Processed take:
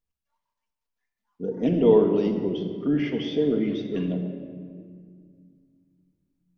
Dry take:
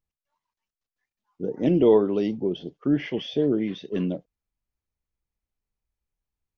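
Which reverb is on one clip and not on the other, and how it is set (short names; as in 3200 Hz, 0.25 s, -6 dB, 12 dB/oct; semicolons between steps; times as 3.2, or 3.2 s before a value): shoebox room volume 3900 m³, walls mixed, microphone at 1.7 m; gain -2.5 dB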